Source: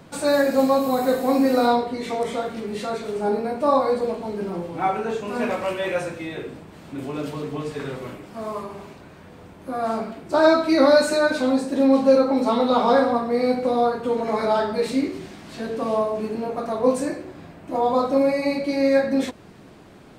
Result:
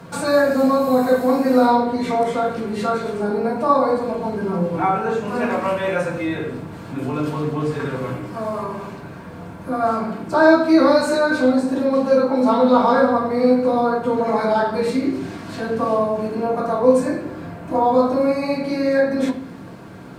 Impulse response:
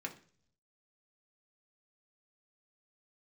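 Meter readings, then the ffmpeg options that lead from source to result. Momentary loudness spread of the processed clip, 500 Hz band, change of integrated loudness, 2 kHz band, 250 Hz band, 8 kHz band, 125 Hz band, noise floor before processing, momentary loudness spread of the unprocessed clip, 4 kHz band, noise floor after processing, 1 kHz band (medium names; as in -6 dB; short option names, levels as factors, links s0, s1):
14 LU, +2.5 dB, +3.0 dB, +4.0 dB, +3.5 dB, -0.5 dB, +8.0 dB, -46 dBFS, 15 LU, -1.0 dB, -36 dBFS, +3.5 dB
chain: -filter_complex "[0:a]asplit=2[s0][s1];[s1]acompressor=threshold=0.0282:ratio=6,volume=1.19[s2];[s0][s2]amix=inputs=2:normalize=0,acrusher=bits=8:mix=0:aa=0.5[s3];[1:a]atrim=start_sample=2205,asetrate=27783,aresample=44100[s4];[s3][s4]afir=irnorm=-1:irlink=0,volume=0.841"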